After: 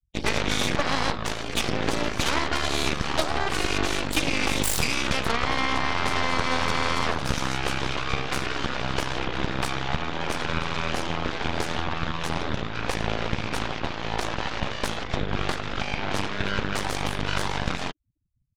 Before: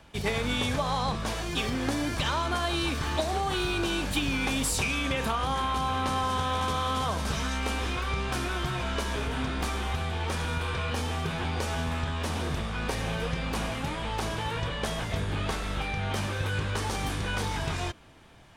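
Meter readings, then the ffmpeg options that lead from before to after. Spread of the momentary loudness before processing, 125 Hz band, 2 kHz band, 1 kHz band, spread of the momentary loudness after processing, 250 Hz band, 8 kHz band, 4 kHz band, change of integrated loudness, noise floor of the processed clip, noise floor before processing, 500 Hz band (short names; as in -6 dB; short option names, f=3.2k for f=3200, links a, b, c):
4 LU, -1.0 dB, +5.0 dB, +2.5 dB, 5 LU, +2.0 dB, +3.5 dB, +4.0 dB, +3.0 dB, -33 dBFS, -34 dBFS, +3.0 dB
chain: -af "afftfilt=real='re*gte(hypot(re,im),0.0112)':imag='im*gte(hypot(re,im),0.0112)':win_size=1024:overlap=0.75,aeval=exprs='0.178*(cos(1*acos(clip(val(0)/0.178,-1,1)))-cos(1*PI/2))+0.0251*(cos(3*acos(clip(val(0)/0.178,-1,1)))-cos(3*PI/2))+0.0398*(cos(6*acos(clip(val(0)/0.178,-1,1)))-cos(6*PI/2))+0.0178*(cos(7*acos(clip(val(0)/0.178,-1,1)))-cos(7*PI/2))':c=same,volume=4.5dB"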